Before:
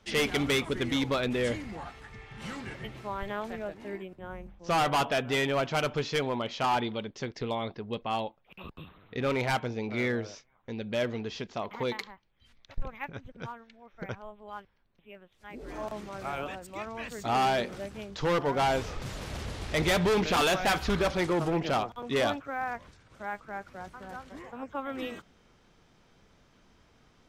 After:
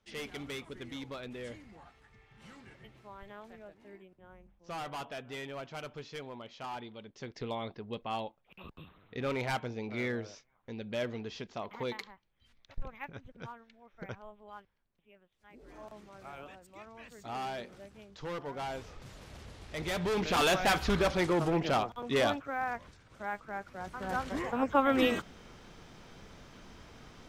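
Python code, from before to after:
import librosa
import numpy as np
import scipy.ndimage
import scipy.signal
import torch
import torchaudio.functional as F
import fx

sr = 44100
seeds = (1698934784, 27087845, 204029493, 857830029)

y = fx.gain(x, sr, db=fx.line((6.95, -14.0), (7.39, -5.0), (14.34, -5.0), (15.13, -12.0), (19.69, -12.0), (20.49, -1.0), (23.75, -1.0), (24.19, 9.5)))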